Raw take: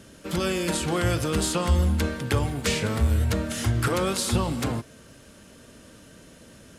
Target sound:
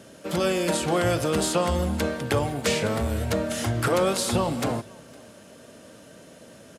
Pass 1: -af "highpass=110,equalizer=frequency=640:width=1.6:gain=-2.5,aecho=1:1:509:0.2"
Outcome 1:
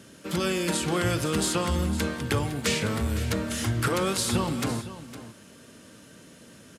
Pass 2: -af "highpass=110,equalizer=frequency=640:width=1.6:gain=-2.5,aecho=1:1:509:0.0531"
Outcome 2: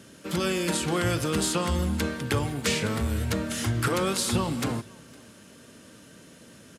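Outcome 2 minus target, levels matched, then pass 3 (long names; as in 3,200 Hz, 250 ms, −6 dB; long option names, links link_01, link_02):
500 Hz band −3.5 dB
-af "highpass=110,equalizer=frequency=640:width=1.6:gain=7.5,aecho=1:1:509:0.0531"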